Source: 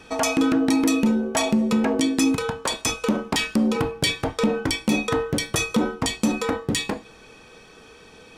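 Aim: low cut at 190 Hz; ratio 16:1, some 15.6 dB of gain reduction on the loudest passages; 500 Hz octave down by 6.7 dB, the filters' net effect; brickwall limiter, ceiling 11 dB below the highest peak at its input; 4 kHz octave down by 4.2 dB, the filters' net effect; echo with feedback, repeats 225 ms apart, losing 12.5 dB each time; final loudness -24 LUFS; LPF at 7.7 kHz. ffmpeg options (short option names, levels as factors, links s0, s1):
-af "highpass=190,lowpass=7700,equalizer=f=500:t=o:g=-8,equalizer=f=4000:t=o:g=-5,acompressor=threshold=0.0178:ratio=16,alimiter=level_in=2.51:limit=0.0631:level=0:latency=1,volume=0.398,aecho=1:1:225|450|675:0.237|0.0569|0.0137,volume=7.94"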